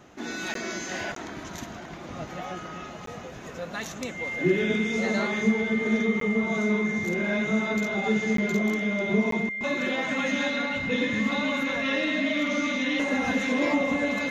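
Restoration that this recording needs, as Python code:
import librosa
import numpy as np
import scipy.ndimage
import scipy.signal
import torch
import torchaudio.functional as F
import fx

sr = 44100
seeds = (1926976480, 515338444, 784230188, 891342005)

y = fx.notch(x, sr, hz=2100.0, q=30.0)
y = fx.fix_interpolate(y, sr, at_s=(0.54, 1.15, 3.06, 6.2, 8.37, 9.31), length_ms=13.0)
y = fx.fix_echo_inverse(y, sr, delay_ms=720, level_db=-19.5)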